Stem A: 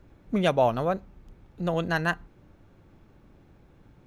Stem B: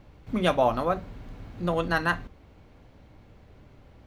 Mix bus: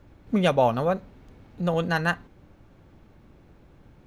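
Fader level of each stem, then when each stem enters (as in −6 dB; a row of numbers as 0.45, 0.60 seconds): +1.5, −8.5 decibels; 0.00, 0.00 seconds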